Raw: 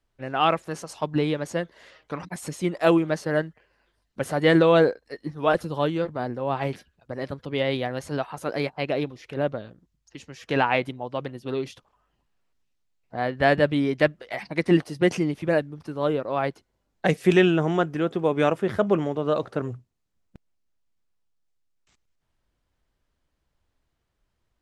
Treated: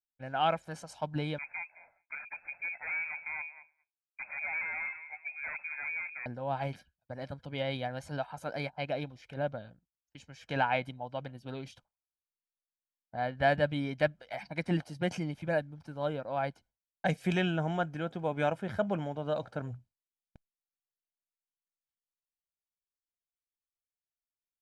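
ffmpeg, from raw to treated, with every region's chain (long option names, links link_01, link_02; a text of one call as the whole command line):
ffmpeg -i in.wav -filter_complex "[0:a]asettb=1/sr,asplit=3[link_01][link_02][link_03];[link_01]atrim=end=1.384[link_04];[link_02]atrim=start=1.38:end=6.26,asetpts=PTS-STARTPTS,afade=type=in:duration=0.004:curve=qsin,afade=type=out:start_time=4.876:duration=0.004:curve=qsin,aecho=1:1:210|420:0.0794|0.0222,atrim=end_sample=215208,aeval=exprs='(tanh(22.4*val(0)+0.3)-tanh(0.3))/22.4':channel_layout=same,lowpass=frequency=2200:width_type=q:width=0.5098,lowpass=frequency=2200:width_type=q:width=0.6013,lowpass=frequency=2200:width_type=q:width=0.9,lowpass=frequency=2200:width_type=q:width=2.563,afreqshift=-2600[link_05];[link_03]atrim=start=6.256[link_06];[link_04][link_05]acrossfade=duration=0.004:curve1=hsin:curve2=qsin[link_07];[link_07][link_06]acrossfade=duration=0.004:curve1=qsin:curve2=hsin,agate=range=-33dB:threshold=-45dB:ratio=3:detection=peak,highshelf=frequency=10000:gain=-6,aecho=1:1:1.3:0.62,volume=-9dB" out.wav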